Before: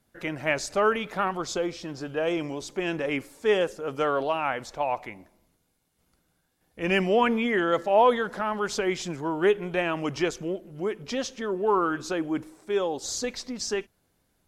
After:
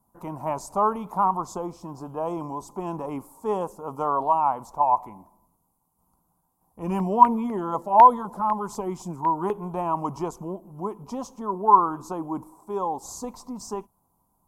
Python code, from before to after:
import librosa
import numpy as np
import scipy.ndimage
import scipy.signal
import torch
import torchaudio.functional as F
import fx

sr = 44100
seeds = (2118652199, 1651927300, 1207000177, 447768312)

y = fx.curve_eq(x, sr, hz=(130.0, 190.0, 310.0, 540.0, 1000.0, 1700.0, 2500.0, 3600.0, 7800.0, 13000.0), db=(0, 4, -2, -5, 15, -23, -19, -19, -2, 6))
y = fx.filter_lfo_notch(y, sr, shape='saw_down', hz=4.0, low_hz=410.0, high_hz=1900.0, q=2.1, at=(6.82, 9.5), fade=0.02)
y = y * 10.0 ** (-1.0 / 20.0)